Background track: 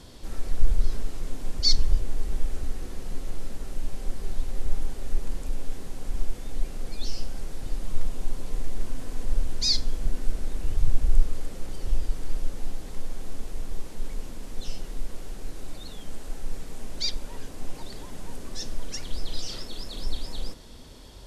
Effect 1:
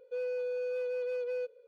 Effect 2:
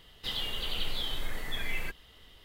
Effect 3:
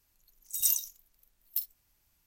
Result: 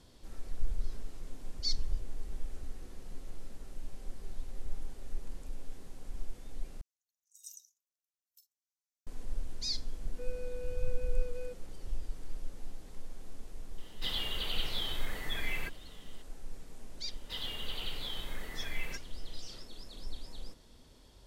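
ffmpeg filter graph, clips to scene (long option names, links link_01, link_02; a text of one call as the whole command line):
ffmpeg -i bed.wav -i cue0.wav -i cue1.wav -i cue2.wav -filter_complex "[2:a]asplit=2[link_01][link_02];[0:a]volume=-12dB[link_03];[3:a]bandpass=frequency=6300:width_type=q:width=2.2:csg=0[link_04];[link_03]asplit=2[link_05][link_06];[link_05]atrim=end=6.814[link_07];[link_04]atrim=end=2.26,asetpts=PTS-STARTPTS,volume=-17.5dB[link_08];[link_06]atrim=start=9.066[link_09];[1:a]atrim=end=1.67,asetpts=PTS-STARTPTS,volume=-9dB,afade=type=in:duration=0.004:curve=hsin,afade=type=out:start_time=1.666:duration=0.004:curve=hsin,adelay=10070[link_10];[link_01]atrim=end=2.44,asetpts=PTS-STARTPTS,volume=-1.5dB,afade=type=in:duration=0.004:curve=hsin,afade=type=out:start_time=2.436:duration=0.004:curve=hsin,adelay=13780[link_11];[link_02]atrim=end=2.44,asetpts=PTS-STARTPTS,volume=-5.5dB,afade=type=in:duration=0.004:curve=hsin,afade=type=out:start_time=2.436:duration=0.004:curve=hsin,adelay=17060[link_12];[link_07][link_08]acrossfade=duration=0.004:curve1=hsin:curve2=hsin[link_13];[link_13][link_09]acrossfade=duration=0.004:curve1=hsin:curve2=hsin[link_14];[link_14][link_10][link_11][link_12]amix=inputs=4:normalize=0" out.wav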